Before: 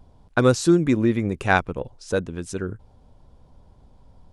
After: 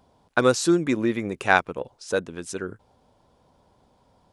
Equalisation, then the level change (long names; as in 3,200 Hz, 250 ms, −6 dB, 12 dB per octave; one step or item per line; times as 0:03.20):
high-pass filter 420 Hz 6 dB per octave
+1.5 dB